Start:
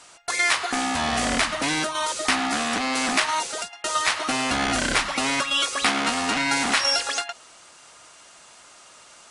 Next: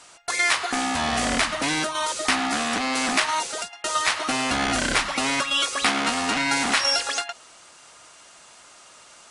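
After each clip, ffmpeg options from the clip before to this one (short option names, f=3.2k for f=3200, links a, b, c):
-af anull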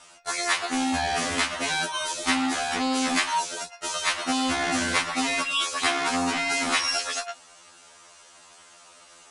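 -af "afftfilt=real='re*2*eq(mod(b,4),0)':imag='im*2*eq(mod(b,4),0)':win_size=2048:overlap=0.75"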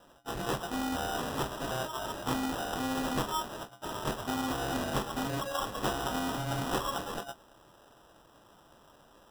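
-af "acrusher=samples=20:mix=1:aa=0.000001,volume=-7.5dB"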